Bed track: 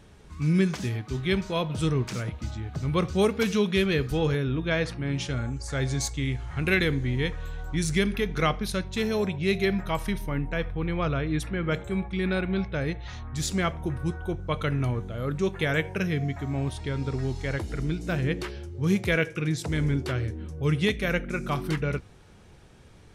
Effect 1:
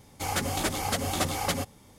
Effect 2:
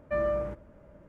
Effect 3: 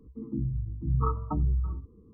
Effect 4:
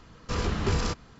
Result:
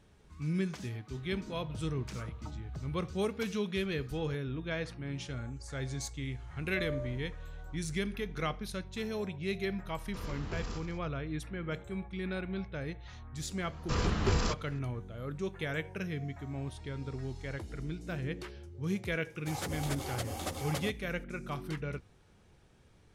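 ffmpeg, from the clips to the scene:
-filter_complex "[4:a]asplit=2[a][b];[0:a]volume=-10dB[c];[3:a]acompressor=threshold=-38dB:ratio=6:attack=3.2:release=140:knee=1:detection=peak[d];[2:a]aecho=1:1:2:0.94[e];[a]aecho=1:1:81.63|198.3:0.355|0.282[f];[1:a]equalizer=f=530:w=1.5:g=3.5[g];[d]atrim=end=2.13,asetpts=PTS-STARTPTS,volume=-5.5dB,afade=t=in:d=0.004:c=hsin,afade=t=out:st=2.126:d=0.004:c=hsin,adelay=1150[h];[e]atrim=end=1.08,asetpts=PTS-STARTPTS,volume=-15dB,afade=t=in:d=0.004:c=hsin,afade=t=out:st=1.076:d=0.004:c=hsin,adelay=6640[i];[f]atrim=end=1.19,asetpts=PTS-STARTPTS,volume=-14.5dB,afade=t=in:d=0.004:c=hsin,afade=t=out:st=1.186:d=0.004:c=hsin,adelay=9850[j];[b]atrim=end=1.19,asetpts=PTS-STARTPTS,volume=-2.5dB,afade=t=in:d=0.004:c=hsin,afade=t=out:st=1.186:d=0.004:c=hsin,adelay=13600[k];[g]atrim=end=1.98,asetpts=PTS-STARTPTS,volume=-11dB,afade=t=in:d=0.004:c=hsin,afade=t=out:st=1.976:d=0.004:c=hsin,adelay=19260[l];[c][h][i][j][k][l]amix=inputs=6:normalize=0"

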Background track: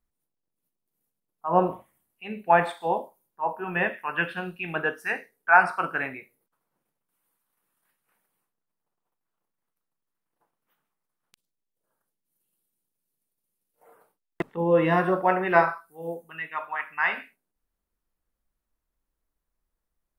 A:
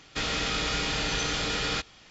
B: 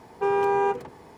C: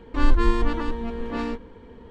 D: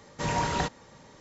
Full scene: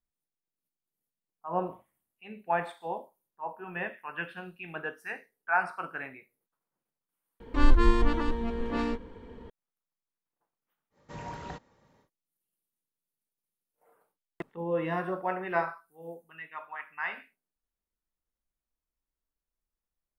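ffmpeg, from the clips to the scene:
-filter_complex "[0:a]volume=-9.5dB[a];[4:a]highshelf=f=3.5k:g=-10.5[b];[3:a]atrim=end=2.1,asetpts=PTS-STARTPTS,volume=-2dB,afade=t=in:d=0.004:c=hsin,afade=t=out:st=2.096:d=0.004:c=hsin,adelay=7400[c];[b]atrim=end=1.2,asetpts=PTS-STARTPTS,volume=-12dB,afade=t=in:d=0.1,afade=t=out:st=1.1:d=0.1,adelay=480690S[d];[a][c][d]amix=inputs=3:normalize=0"

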